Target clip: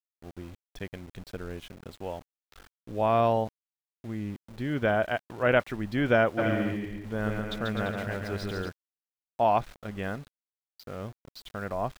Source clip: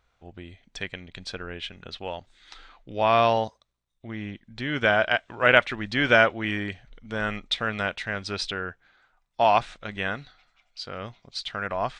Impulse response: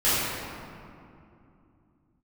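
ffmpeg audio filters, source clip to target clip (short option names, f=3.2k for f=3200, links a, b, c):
-filter_complex "[0:a]tiltshelf=f=1.1k:g=8,aeval=exprs='val(0)*gte(abs(val(0)),0.0106)':c=same,asplit=3[a][b][c];[a]afade=t=out:st=6.37:d=0.02[d];[b]aecho=1:1:140|252|341.6|413.3|470.6:0.631|0.398|0.251|0.158|0.1,afade=t=in:st=6.37:d=0.02,afade=t=out:st=8.68:d=0.02[e];[c]afade=t=in:st=8.68:d=0.02[f];[d][e][f]amix=inputs=3:normalize=0,volume=-6.5dB"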